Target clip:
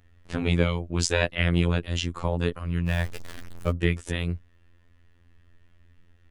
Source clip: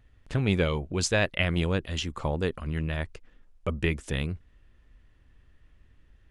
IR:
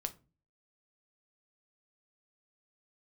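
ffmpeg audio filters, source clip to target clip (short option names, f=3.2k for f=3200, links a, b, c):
-filter_complex "[0:a]asettb=1/sr,asplit=3[a][b][c];[a]atrim=end=2.874[d];[b]atrim=start=2.87:end=3.71,asetpts=PTS-STARTPTS,afade=t=in:d=0.004:c=qsin,afade=t=out:st=0.836:d=0.004:c=qsin,aeval=exprs='val(0)+0.5*0.0211*sgn(val(0))':c=same[e];[c]atrim=start=3.706[f];[d][e]acrossfade=d=0.004:c1=hsin:c2=qsin[g];[g][f]acrossfade=d=0.004:c1=qsin:c2=hsin,afftfilt=real='hypot(re,im)*cos(PI*b)':imag='0':win_size=2048:overlap=0.75,volume=5dB"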